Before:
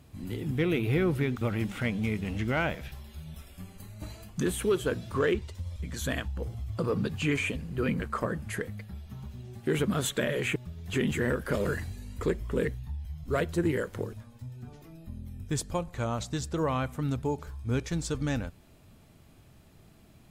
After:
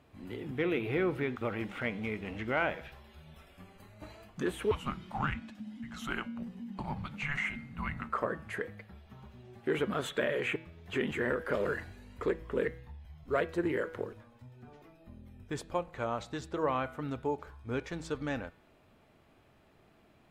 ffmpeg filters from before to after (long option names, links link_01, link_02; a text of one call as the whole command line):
ffmpeg -i in.wav -filter_complex "[0:a]asettb=1/sr,asplit=3[link_01][link_02][link_03];[link_01]atrim=end=4.714[link_04];[link_02]atrim=start=4.71:end=8.09,asetpts=PTS-STARTPTS,afade=type=in:duration=0.004:curve=qsin,afade=type=out:start_time=3.376:duration=0.004:curve=qsin,afreqshift=-300[link_05];[link_03]atrim=start=8.086[link_06];[link_04][link_05]acrossfade=duration=0.004:curve1=hsin:curve2=qsin[link_07];[link_07][link_06]acrossfade=duration=0.004:curve1=qsin:curve2=hsin,bass=frequency=250:gain=-12,treble=frequency=4000:gain=-15,bandreject=frequency=162.5:width_type=h:width=4,bandreject=frequency=325:width_type=h:width=4,bandreject=frequency=487.5:width_type=h:width=4,bandreject=frequency=650:width_type=h:width=4,bandreject=frequency=812.5:width_type=h:width=4,bandreject=frequency=975:width_type=h:width=4,bandreject=frequency=1137.5:width_type=h:width=4,bandreject=frequency=1300:width_type=h:width=4,bandreject=frequency=1462.5:width_type=h:width=4,bandreject=frequency=1625:width_type=h:width=4,bandreject=frequency=1787.5:width_type=h:width=4,bandreject=frequency=1950:width_type=h:width=4,bandreject=frequency=2112.5:width_type=h:width=4,bandreject=frequency=2275:width_type=h:width=4,bandreject=frequency=2437.5:width_type=h:width=4,bandreject=frequency=2600:width_type=h:width=4,bandreject=frequency=2762.5:width_type=h:width=4,bandreject=frequency=2925:width_type=h:width=4,bandreject=frequency=3087.5:width_type=h:width=4,bandreject=frequency=3250:width_type=h:width=4,bandreject=frequency=3412.5:width_type=h:width=4,bandreject=frequency=3575:width_type=h:width=4,bandreject=frequency=3737.5:width_type=h:width=4,bandreject=frequency=3900:width_type=h:width=4,bandreject=frequency=4062.5:width_type=h:width=4,bandreject=frequency=4225:width_type=h:width=4,bandreject=frequency=4387.5:width_type=h:width=4,bandreject=frequency=4550:width_type=h:width=4" out.wav